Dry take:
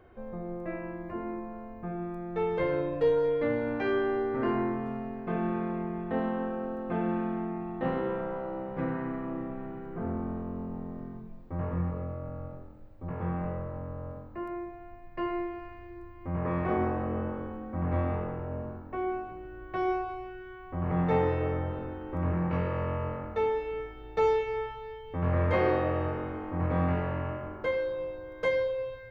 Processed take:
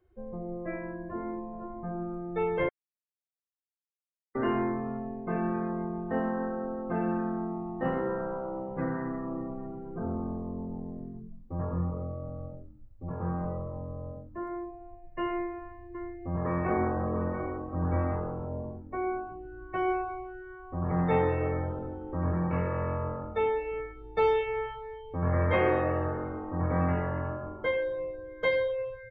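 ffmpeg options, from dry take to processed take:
ffmpeg -i in.wav -filter_complex "[0:a]asplit=2[link_01][link_02];[link_02]afade=type=in:start_time=1.02:duration=0.01,afade=type=out:start_time=1.68:duration=0.01,aecho=0:1:500|1000|1500|2000:0.398107|0.119432|0.0358296|0.0107489[link_03];[link_01][link_03]amix=inputs=2:normalize=0,asettb=1/sr,asplit=3[link_04][link_05][link_06];[link_04]atrim=end=15.264[link_07];[link_05]atrim=start=15.26:end=18.45,asetpts=PTS-STARTPTS,afade=type=in:duration=0.004:curve=qsin,afade=type=out:start_time=3.186:duration=0.004:curve=qsin,aecho=1:1:686:0.376,atrim=end_sample=140679[link_08];[link_06]atrim=start=18.446[link_09];[link_07][link_08]acrossfade=duration=0.004:curve1=hsin:curve2=qsin[link_10];[link_10][link_09]acrossfade=duration=0.004:curve1=qsin:curve2=hsin,asplit=3[link_11][link_12][link_13];[link_11]atrim=end=2.69,asetpts=PTS-STARTPTS,afade=type=out:start_time=2.686:duration=0.004:curve=hsin[link_14];[link_12]atrim=start=2.69:end=4.35,asetpts=PTS-STARTPTS,volume=0[link_15];[link_13]atrim=start=4.35,asetpts=PTS-STARTPTS,afade=type=in:duration=0.004:curve=hsin[link_16];[link_14][link_15][link_16]concat=n=3:v=0:a=1,afftdn=noise_reduction=21:noise_floor=-42,highshelf=frequency=3000:gain=10.5" out.wav

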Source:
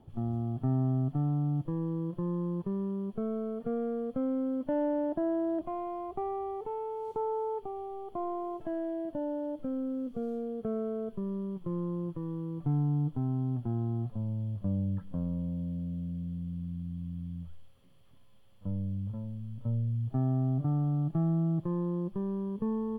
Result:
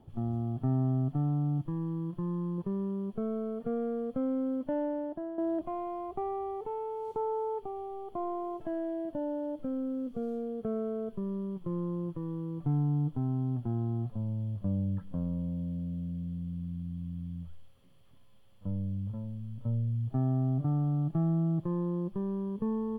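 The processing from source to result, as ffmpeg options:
ffmpeg -i in.wav -filter_complex "[0:a]asettb=1/sr,asplit=3[link_01][link_02][link_03];[link_01]atrim=end=1.584[link_04];[link_02]atrim=start=1.58:end=2.58,asetpts=PTS-STARTPTS,afade=type=in:duration=0.004:curve=qsin,afade=type=out:start_time=0.996:duration=0.004:curve=qsin,equalizer=frequency=490:width=2.3:gain=-9.5[link_05];[link_03]atrim=start=2.576[link_06];[link_04][link_05]acrossfade=duration=0.004:curve1=hsin:curve2=qsin[link_07];[link_07][link_06]acrossfade=duration=0.004:curve1=qsin:curve2=hsin,asplit=2[link_08][link_09];[link_08]atrim=end=5.38,asetpts=PTS-STARTPTS,afade=type=out:start_time=4.52:duration=0.86:silence=0.298538[link_10];[link_09]atrim=start=5.38,asetpts=PTS-STARTPTS,afade=type=in:duration=0.004:curve=hsin:silence=0.298538[link_11];[link_10][link_11]concat=n=2:v=0:a=1" out.wav

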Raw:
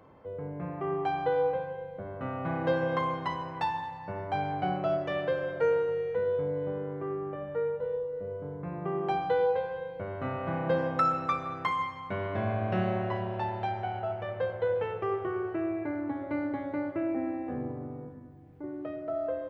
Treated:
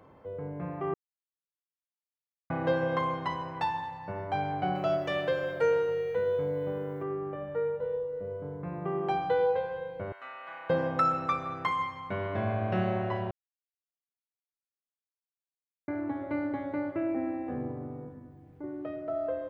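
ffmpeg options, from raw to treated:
ffmpeg -i in.wav -filter_complex "[0:a]asettb=1/sr,asplit=3[link_01][link_02][link_03];[link_01]atrim=end=4.754[link_04];[link_02]atrim=start=4.75:end=7.03,asetpts=PTS-STARTPTS,afade=type=in:duration=0.004:curve=qsin,afade=type=out:start_time=2.276:duration=0.004:curve=qsin,aemphasis=mode=production:type=75kf[link_05];[link_03]atrim=start=7.026[link_06];[link_04][link_05]acrossfade=duration=0.004:curve1=hsin:curve2=qsin[link_07];[link_07][link_06]acrossfade=duration=0.004:curve1=qsin:curve2=hsin,asettb=1/sr,asplit=3[link_08][link_09][link_10];[link_08]atrim=end=10.124[link_11];[link_09]atrim=start=10.12:end=10.7,asetpts=PTS-STARTPTS,afade=type=in:duration=0.004:curve=qsin,afade=type=out:start_time=0.576:duration=0.004:curve=qsin,highpass=1400[link_12];[link_10]atrim=start=10.696[link_13];[link_11][link_12]acrossfade=duration=0.004:curve1=hsin:curve2=qsin[link_14];[link_14][link_13]acrossfade=duration=0.004:curve1=qsin:curve2=hsin,asplit=5[link_15][link_16][link_17][link_18][link_19];[link_15]atrim=end=0.94,asetpts=PTS-STARTPTS,afade=type=out:start_time=0.936:duration=0.004:curve=hsin[link_20];[link_16]atrim=start=0.94:end=2.5,asetpts=PTS-STARTPTS,volume=0[link_21];[link_17]atrim=start=2.5:end=13.31,asetpts=PTS-STARTPTS,afade=type=in:duration=0.004:curve=hsin,afade=type=out:start_time=10.806:duration=0.004:curve=hsin[link_22];[link_18]atrim=start=13.31:end=15.88,asetpts=PTS-STARTPTS,volume=0[link_23];[link_19]atrim=start=15.88,asetpts=PTS-STARTPTS,afade=type=in:duration=0.004:curve=hsin[link_24];[link_20][link_21][link_22][link_23][link_24]concat=n=5:v=0:a=1" out.wav

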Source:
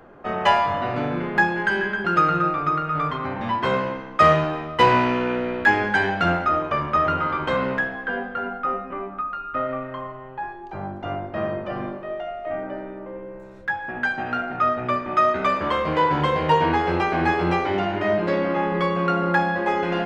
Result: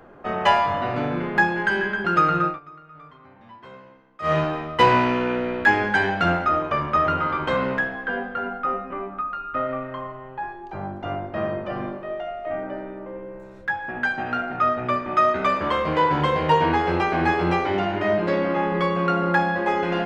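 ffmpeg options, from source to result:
ffmpeg -i in.wav -filter_complex "[0:a]asplit=3[link_01][link_02][link_03];[link_01]atrim=end=2.6,asetpts=PTS-STARTPTS,afade=type=out:start_time=2.44:duration=0.16:silence=0.0841395[link_04];[link_02]atrim=start=2.6:end=4.22,asetpts=PTS-STARTPTS,volume=-21.5dB[link_05];[link_03]atrim=start=4.22,asetpts=PTS-STARTPTS,afade=type=in:duration=0.16:silence=0.0841395[link_06];[link_04][link_05][link_06]concat=n=3:v=0:a=1" out.wav

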